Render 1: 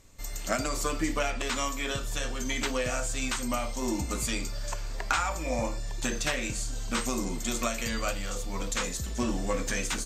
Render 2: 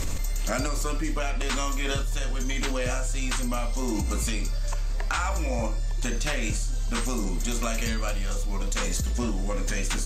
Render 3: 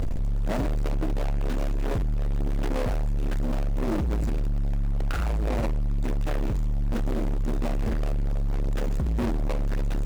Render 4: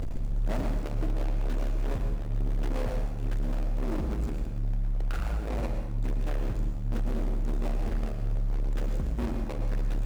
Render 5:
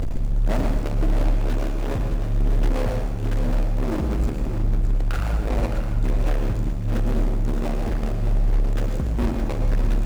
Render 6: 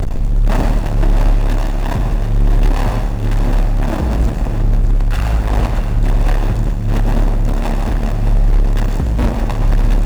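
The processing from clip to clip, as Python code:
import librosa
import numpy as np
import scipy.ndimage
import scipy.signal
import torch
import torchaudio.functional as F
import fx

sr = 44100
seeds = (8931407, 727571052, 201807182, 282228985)

y1 = fx.low_shelf(x, sr, hz=100.0, db=9.0)
y1 = fx.env_flatten(y1, sr, amount_pct=100)
y1 = F.gain(torch.from_numpy(y1), -4.0).numpy()
y2 = scipy.signal.medfilt(y1, 41)
y2 = np.clip(y2, -10.0 ** (-31.5 / 20.0), 10.0 ** (-31.5 / 20.0))
y2 = F.gain(torch.from_numpy(y2), 8.5).numpy()
y3 = fx.rider(y2, sr, range_db=10, speed_s=2.0)
y3 = fx.rev_plate(y3, sr, seeds[0], rt60_s=0.85, hf_ratio=0.9, predelay_ms=95, drr_db=5.0)
y3 = F.gain(torch.from_numpy(y3), -6.5).numpy()
y4 = y3 + 10.0 ** (-8.0 / 20.0) * np.pad(y3, (int(615 * sr / 1000.0), 0))[:len(y3)]
y4 = F.gain(torch.from_numpy(y4), 7.5).numpy()
y5 = fx.lower_of_two(y4, sr, delay_ms=1.1)
y5 = F.gain(torch.from_numpy(y5), 8.0).numpy()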